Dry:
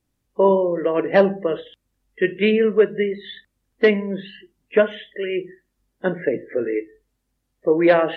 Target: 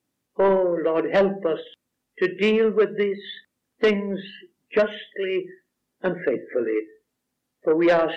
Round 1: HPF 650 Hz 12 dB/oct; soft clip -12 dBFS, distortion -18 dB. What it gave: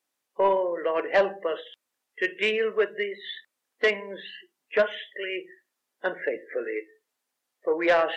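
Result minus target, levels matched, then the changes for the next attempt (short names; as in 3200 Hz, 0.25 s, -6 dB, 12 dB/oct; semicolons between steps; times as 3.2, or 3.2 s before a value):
125 Hz band -12.5 dB
change: HPF 170 Hz 12 dB/oct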